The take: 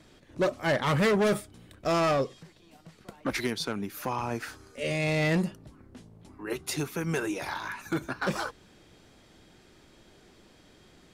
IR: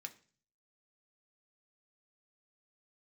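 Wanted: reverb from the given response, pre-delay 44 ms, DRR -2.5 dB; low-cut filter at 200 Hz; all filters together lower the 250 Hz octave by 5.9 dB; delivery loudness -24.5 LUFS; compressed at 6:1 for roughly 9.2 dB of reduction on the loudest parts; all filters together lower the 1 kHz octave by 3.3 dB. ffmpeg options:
-filter_complex "[0:a]highpass=200,equalizer=f=250:t=o:g=-5.5,equalizer=f=1000:t=o:g=-4,acompressor=threshold=0.0224:ratio=6,asplit=2[s0][s1];[1:a]atrim=start_sample=2205,adelay=44[s2];[s1][s2]afir=irnorm=-1:irlink=0,volume=2.11[s3];[s0][s3]amix=inputs=2:normalize=0,volume=3.16"

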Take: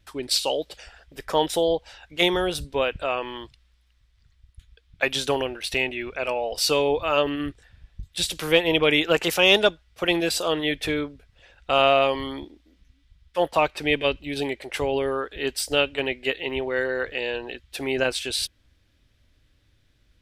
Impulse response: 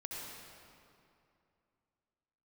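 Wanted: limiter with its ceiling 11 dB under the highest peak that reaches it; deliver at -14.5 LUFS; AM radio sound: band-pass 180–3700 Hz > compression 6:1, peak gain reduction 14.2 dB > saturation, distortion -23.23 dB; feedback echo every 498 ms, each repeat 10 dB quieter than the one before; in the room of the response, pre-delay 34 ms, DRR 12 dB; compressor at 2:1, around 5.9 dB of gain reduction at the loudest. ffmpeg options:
-filter_complex "[0:a]acompressor=threshold=0.0708:ratio=2,alimiter=limit=0.106:level=0:latency=1,aecho=1:1:498|996|1494|1992:0.316|0.101|0.0324|0.0104,asplit=2[s0][s1];[1:a]atrim=start_sample=2205,adelay=34[s2];[s1][s2]afir=irnorm=-1:irlink=0,volume=0.251[s3];[s0][s3]amix=inputs=2:normalize=0,highpass=180,lowpass=3700,acompressor=threshold=0.0112:ratio=6,asoftclip=threshold=0.0299,volume=26.6"

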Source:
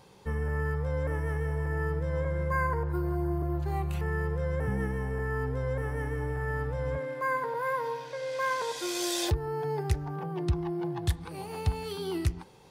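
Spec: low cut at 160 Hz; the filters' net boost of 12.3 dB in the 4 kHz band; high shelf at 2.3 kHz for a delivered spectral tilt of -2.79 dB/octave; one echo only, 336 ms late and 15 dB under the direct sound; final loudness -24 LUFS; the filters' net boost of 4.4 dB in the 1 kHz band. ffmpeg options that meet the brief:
-af "highpass=160,equalizer=f=1000:t=o:g=3,highshelf=f=2300:g=8.5,equalizer=f=4000:t=o:g=7,aecho=1:1:336:0.178,volume=1.88"

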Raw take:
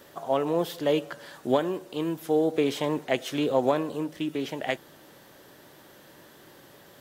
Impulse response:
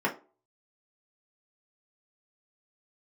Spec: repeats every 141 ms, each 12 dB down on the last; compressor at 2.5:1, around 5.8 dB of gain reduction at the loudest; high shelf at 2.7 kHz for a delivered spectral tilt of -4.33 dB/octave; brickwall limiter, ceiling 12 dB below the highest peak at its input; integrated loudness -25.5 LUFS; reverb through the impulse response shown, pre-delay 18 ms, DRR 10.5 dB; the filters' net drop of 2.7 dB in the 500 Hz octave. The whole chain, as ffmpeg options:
-filter_complex "[0:a]equalizer=f=500:t=o:g=-3.5,highshelf=f=2700:g=6,acompressor=threshold=0.0355:ratio=2.5,alimiter=level_in=1.33:limit=0.0631:level=0:latency=1,volume=0.75,aecho=1:1:141|282|423:0.251|0.0628|0.0157,asplit=2[s0][s1];[1:a]atrim=start_sample=2205,adelay=18[s2];[s1][s2]afir=irnorm=-1:irlink=0,volume=0.0841[s3];[s0][s3]amix=inputs=2:normalize=0,volume=3.55"

